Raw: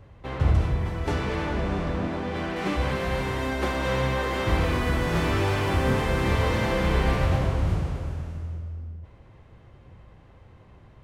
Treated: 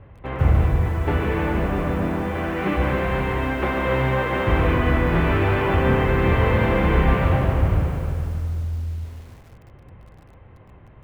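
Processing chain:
low-pass filter 2,800 Hz 24 dB per octave
feedback echo at a low word length 146 ms, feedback 55%, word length 8 bits, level −8 dB
level +4 dB

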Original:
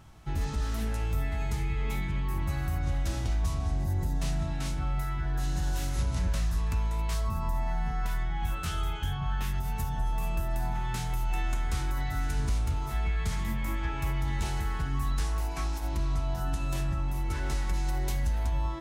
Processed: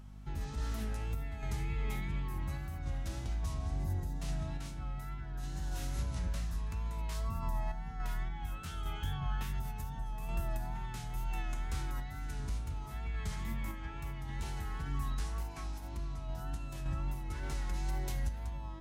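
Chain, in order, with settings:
sample-and-hold tremolo 3.5 Hz
mains hum 50 Hz, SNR 14 dB
tape wow and flutter 40 cents
level −5 dB

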